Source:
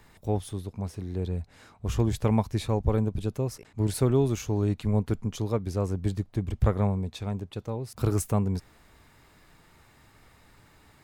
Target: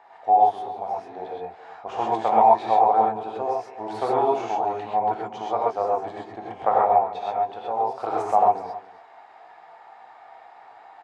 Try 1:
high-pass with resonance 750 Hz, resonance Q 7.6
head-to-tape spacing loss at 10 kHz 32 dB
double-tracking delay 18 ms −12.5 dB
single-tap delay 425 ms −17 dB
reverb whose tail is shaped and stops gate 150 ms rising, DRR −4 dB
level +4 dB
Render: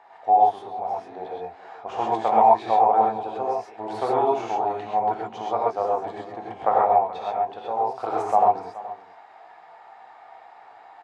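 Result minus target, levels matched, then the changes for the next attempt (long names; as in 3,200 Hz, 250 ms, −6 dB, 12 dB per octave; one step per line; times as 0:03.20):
echo 151 ms late
change: single-tap delay 274 ms −17 dB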